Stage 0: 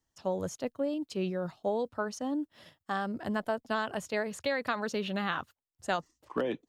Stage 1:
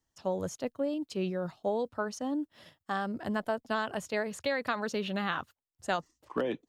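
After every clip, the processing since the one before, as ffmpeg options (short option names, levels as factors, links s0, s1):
-af anull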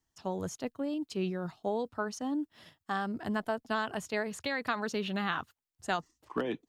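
-af "equalizer=f=550:w=5.2:g=-7.5"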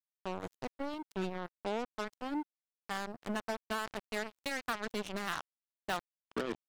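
-af "acrusher=bits=4:mix=0:aa=0.5,volume=0.631"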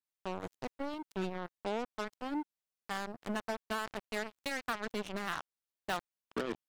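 -af "adynamicequalizer=threshold=0.00316:dfrequency=3200:dqfactor=0.7:tfrequency=3200:tqfactor=0.7:attack=5:release=100:ratio=0.375:range=2:mode=cutabove:tftype=highshelf"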